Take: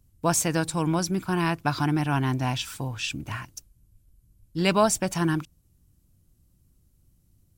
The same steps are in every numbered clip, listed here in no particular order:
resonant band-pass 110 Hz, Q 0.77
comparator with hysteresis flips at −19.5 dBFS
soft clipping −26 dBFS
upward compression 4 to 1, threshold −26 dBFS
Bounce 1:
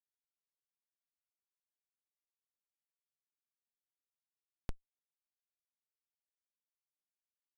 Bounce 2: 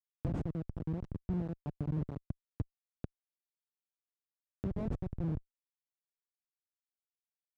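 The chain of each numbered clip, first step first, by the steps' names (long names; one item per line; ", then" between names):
resonant band-pass, then comparator with hysteresis, then upward compression, then soft clipping
comparator with hysteresis, then soft clipping, then upward compression, then resonant band-pass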